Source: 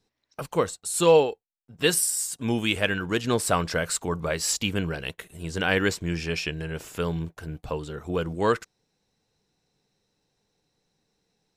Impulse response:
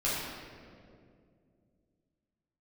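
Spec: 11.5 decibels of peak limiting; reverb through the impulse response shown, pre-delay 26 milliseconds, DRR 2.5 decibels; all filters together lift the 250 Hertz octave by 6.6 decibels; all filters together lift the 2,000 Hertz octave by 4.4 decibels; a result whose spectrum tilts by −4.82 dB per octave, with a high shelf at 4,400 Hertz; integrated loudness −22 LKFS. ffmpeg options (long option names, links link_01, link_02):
-filter_complex "[0:a]equalizer=frequency=250:width_type=o:gain=9,equalizer=frequency=2000:width_type=o:gain=6.5,highshelf=frequency=4400:gain=-3.5,alimiter=limit=-15.5dB:level=0:latency=1,asplit=2[link_01][link_02];[1:a]atrim=start_sample=2205,adelay=26[link_03];[link_02][link_03]afir=irnorm=-1:irlink=0,volume=-11.5dB[link_04];[link_01][link_04]amix=inputs=2:normalize=0,volume=3dB"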